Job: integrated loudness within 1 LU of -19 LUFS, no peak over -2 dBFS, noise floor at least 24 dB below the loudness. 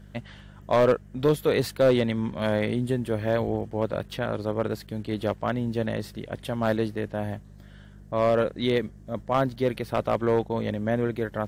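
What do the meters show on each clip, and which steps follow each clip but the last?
clipped 0.3%; flat tops at -13.5 dBFS; hum 50 Hz; harmonics up to 200 Hz; hum level -44 dBFS; loudness -26.5 LUFS; peak -13.5 dBFS; loudness target -19.0 LUFS
-> clip repair -13.5 dBFS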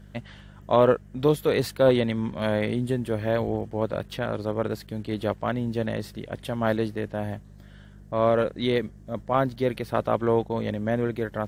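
clipped 0.0%; hum 50 Hz; harmonics up to 200 Hz; hum level -44 dBFS
-> de-hum 50 Hz, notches 4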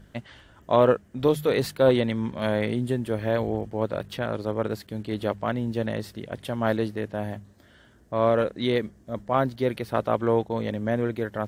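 hum none; loudness -26.0 LUFS; peak -6.0 dBFS; loudness target -19.0 LUFS
-> gain +7 dB; limiter -2 dBFS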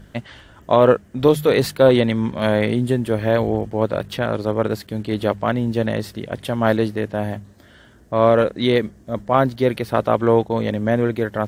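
loudness -19.5 LUFS; peak -2.0 dBFS; noise floor -49 dBFS

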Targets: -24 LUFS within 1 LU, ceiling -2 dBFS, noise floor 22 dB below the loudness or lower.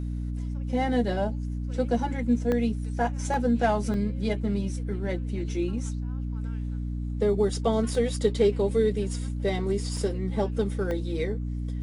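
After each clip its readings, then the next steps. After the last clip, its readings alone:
dropouts 6; longest dropout 1.4 ms; hum 60 Hz; harmonics up to 300 Hz; hum level -28 dBFS; loudness -28.0 LUFS; peak -10.0 dBFS; loudness target -24.0 LUFS
-> interpolate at 2.52/3.34/3.94/7.95/9.97/10.91, 1.4 ms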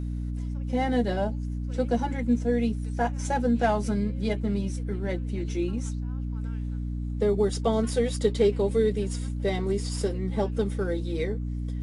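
dropouts 0; hum 60 Hz; harmonics up to 300 Hz; hum level -28 dBFS
-> de-hum 60 Hz, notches 5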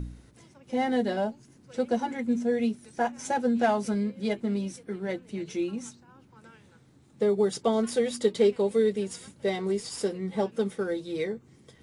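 hum none; loudness -28.5 LUFS; peak -11.0 dBFS; loudness target -24.0 LUFS
-> gain +4.5 dB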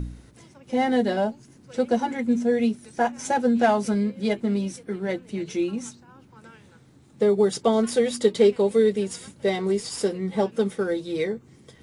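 loudness -24.0 LUFS; peak -6.5 dBFS; noise floor -54 dBFS

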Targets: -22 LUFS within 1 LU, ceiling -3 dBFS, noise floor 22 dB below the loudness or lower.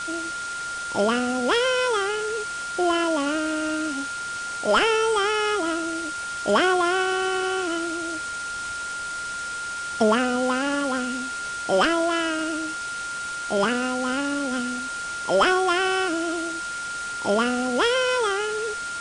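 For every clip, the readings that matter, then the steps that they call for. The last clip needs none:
steady tone 1400 Hz; tone level -29 dBFS; noise floor -31 dBFS; noise floor target -46 dBFS; loudness -24.0 LUFS; peak -9.5 dBFS; loudness target -22.0 LUFS
-> notch 1400 Hz, Q 30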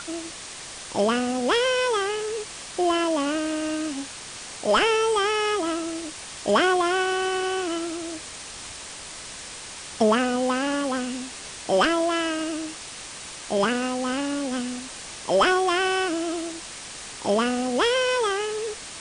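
steady tone none; noise floor -39 dBFS; noise floor target -47 dBFS
-> denoiser 8 dB, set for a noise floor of -39 dBFS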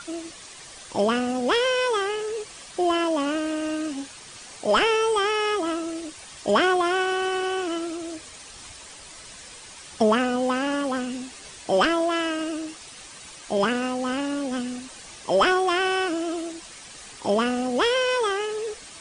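noise floor -44 dBFS; noise floor target -47 dBFS
-> denoiser 6 dB, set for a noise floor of -44 dBFS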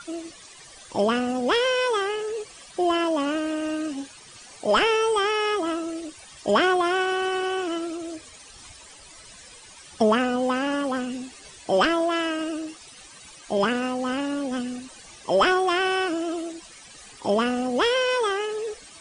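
noise floor -47 dBFS; loudness -24.5 LUFS; peak -9.5 dBFS; loudness target -22.0 LUFS
-> gain +2.5 dB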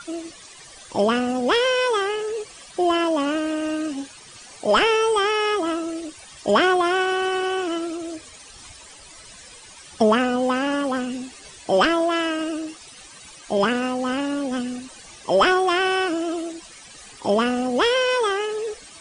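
loudness -22.0 LUFS; peak -7.0 dBFS; noise floor -44 dBFS

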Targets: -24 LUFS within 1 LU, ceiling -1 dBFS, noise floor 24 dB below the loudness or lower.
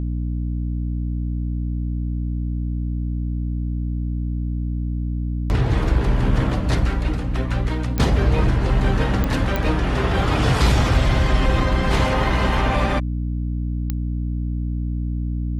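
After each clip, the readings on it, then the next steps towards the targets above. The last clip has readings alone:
clicks 4; hum 60 Hz; harmonics up to 300 Hz; hum level -21 dBFS; loudness -22.5 LUFS; peak -6.0 dBFS; loudness target -24.0 LUFS
-> de-click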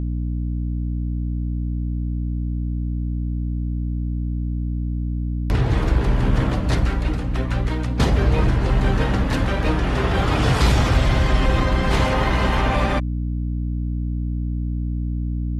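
clicks 0; hum 60 Hz; harmonics up to 300 Hz; hum level -21 dBFS
-> de-hum 60 Hz, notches 5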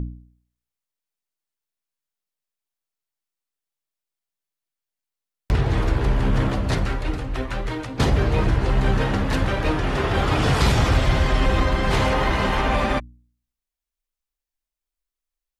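hum none; loudness -22.0 LUFS; peak -7.0 dBFS; loudness target -24.0 LUFS
-> gain -2 dB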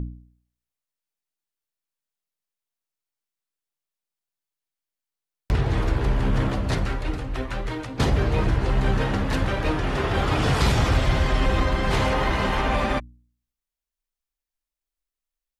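loudness -24.0 LUFS; peak -9.0 dBFS; noise floor -89 dBFS

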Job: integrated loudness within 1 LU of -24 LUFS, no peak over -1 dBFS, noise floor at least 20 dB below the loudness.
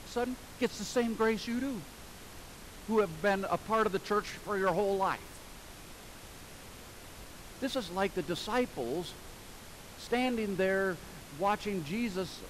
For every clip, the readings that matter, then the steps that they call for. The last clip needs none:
clipped 0.3%; flat tops at -21.0 dBFS; noise floor -50 dBFS; noise floor target -53 dBFS; loudness -33.0 LUFS; peak -21.0 dBFS; loudness target -24.0 LUFS
-> clip repair -21 dBFS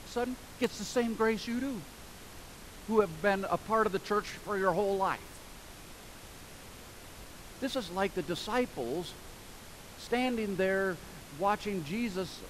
clipped 0.0%; noise floor -50 dBFS; noise floor target -53 dBFS
-> noise print and reduce 6 dB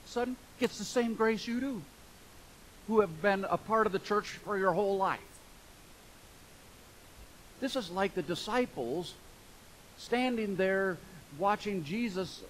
noise floor -56 dBFS; loudness -32.5 LUFS; peak -13.0 dBFS; loudness target -24.0 LUFS
-> gain +8.5 dB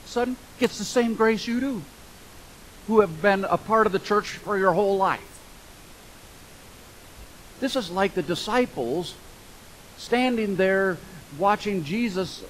loudness -24.0 LUFS; peak -4.5 dBFS; noise floor -47 dBFS

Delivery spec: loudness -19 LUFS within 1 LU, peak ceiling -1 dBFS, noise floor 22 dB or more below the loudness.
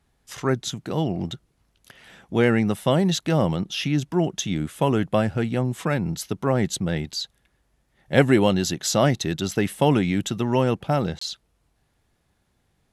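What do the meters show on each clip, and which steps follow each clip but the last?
dropouts 1; longest dropout 24 ms; loudness -23.5 LUFS; peak -2.5 dBFS; loudness target -19.0 LUFS
-> interpolate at 11.19, 24 ms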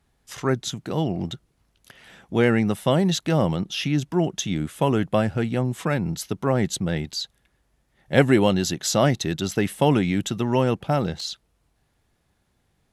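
dropouts 0; loudness -23.5 LUFS; peak -2.5 dBFS; loudness target -19.0 LUFS
-> gain +4.5 dB; limiter -1 dBFS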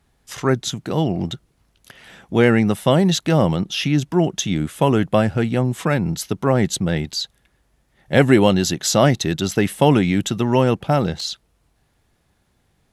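loudness -19.0 LUFS; peak -1.0 dBFS; noise floor -65 dBFS

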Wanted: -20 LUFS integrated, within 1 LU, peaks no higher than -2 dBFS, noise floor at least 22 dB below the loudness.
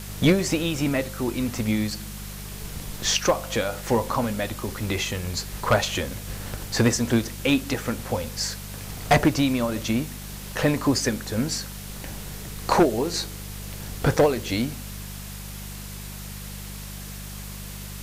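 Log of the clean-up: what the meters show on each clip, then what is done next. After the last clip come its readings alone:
hum 50 Hz; harmonics up to 200 Hz; hum level -35 dBFS; noise floor -37 dBFS; noise floor target -47 dBFS; loudness -25.0 LUFS; peak -10.0 dBFS; loudness target -20.0 LUFS
-> de-hum 50 Hz, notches 4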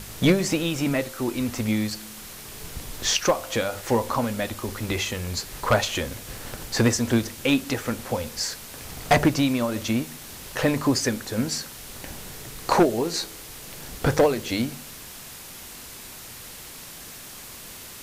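hum none; noise floor -41 dBFS; noise floor target -47 dBFS
-> noise print and reduce 6 dB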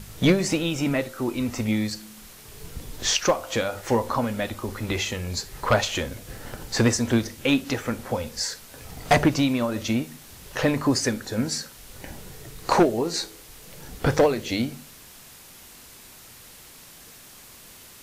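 noise floor -47 dBFS; loudness -25.0 LUFS; peak -10.0 dBFS; loudness target -20.0 LUFS
-> gain +5 dB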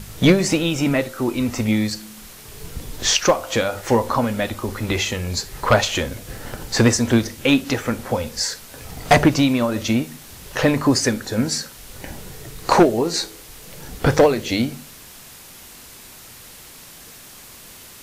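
loudness -20.0 LUFS; peak -5.0 dBFS; noise floor -42 dBFS

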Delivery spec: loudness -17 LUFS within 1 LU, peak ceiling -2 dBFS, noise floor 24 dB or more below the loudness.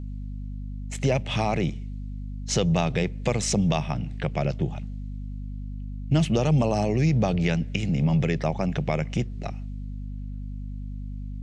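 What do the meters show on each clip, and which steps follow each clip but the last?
hum 50 Hz; harmonics up to 250 Hz; hum level -31 dBFS; loudness -25.5 LUFS; peak -9.5 dBFS; loudness target -17.0 LUFS
-> de-hum 50 Hz, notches 5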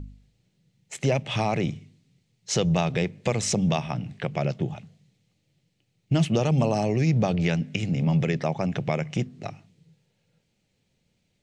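hum none; loudness -25.5 LUFS; peak -11.0 dBFS; loudness target -17.0 LUFS
-> gain +8.5 dB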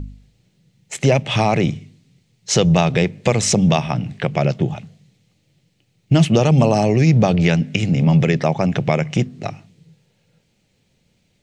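loudness -17.0 LUFS; peak -2.5 dBFS; noise floor -64 dBFS

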